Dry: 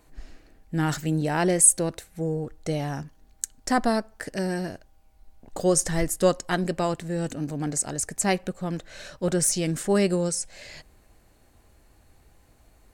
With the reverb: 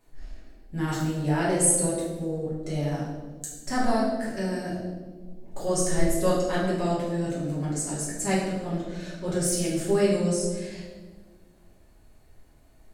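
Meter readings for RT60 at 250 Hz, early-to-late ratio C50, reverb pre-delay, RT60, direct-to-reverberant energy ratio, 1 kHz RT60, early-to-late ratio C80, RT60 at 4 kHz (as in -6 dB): 2.2 s, 1.5 dB, 5 ms, 1.5 s, -8.0 dB, 1.2 s, 4.0 dB, 1.0 s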